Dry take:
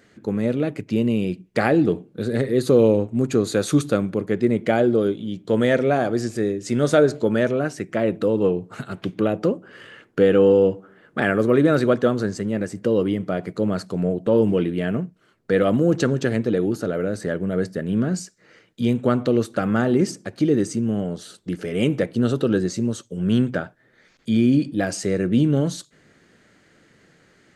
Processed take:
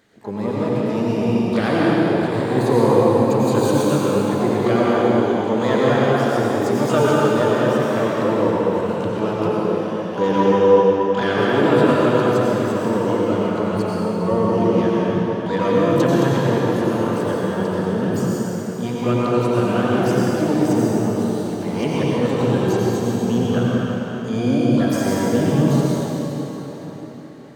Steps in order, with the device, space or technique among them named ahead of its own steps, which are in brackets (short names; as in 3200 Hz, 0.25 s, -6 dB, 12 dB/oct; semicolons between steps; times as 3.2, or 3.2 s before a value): shimmer-style reverb (harmoniser +12 st -8 dB; reverb RT60 4.7 s, pre-delay 84 ms, DRR -6.5 dB); gain -5 dB